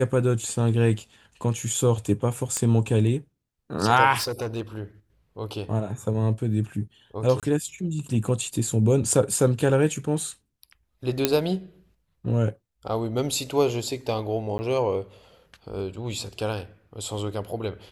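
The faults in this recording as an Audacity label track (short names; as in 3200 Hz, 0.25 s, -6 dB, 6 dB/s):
2.570000	2.570000	pop -12 dBFS
4.170000	4.620000	clipped -24.5 dBFS
7.400000	7.430000	gap 27 ms
11.250000	11.250000	pop -3 dBFS
14.580000	14.590000	gap 10 ms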